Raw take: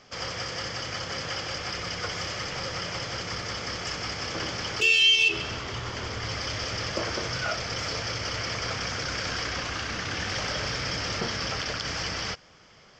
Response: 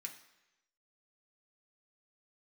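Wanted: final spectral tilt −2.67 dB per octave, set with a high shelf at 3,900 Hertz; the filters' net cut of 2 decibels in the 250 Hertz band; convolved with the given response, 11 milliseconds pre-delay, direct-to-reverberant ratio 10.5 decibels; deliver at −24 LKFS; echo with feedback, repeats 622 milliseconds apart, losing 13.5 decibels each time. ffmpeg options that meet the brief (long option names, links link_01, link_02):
-filter_complex "[0:a]equalizer=frequency=250:width_type=o:gain=-3,highshelf=frequency=3900:gain=-4.5,aecho=1:1:622|1244:0.211|0.0444,asplit=2[link_01][link_02];[1:a]atrim=start_sample=2205,adelay=11[link_03];[link_02][link_03]afir=irnorm=-1:irlink=0,volume=-6.5dB[link_04];[link_01][link_04]amix=inputs=2:normalize=0,volume=5.5dB"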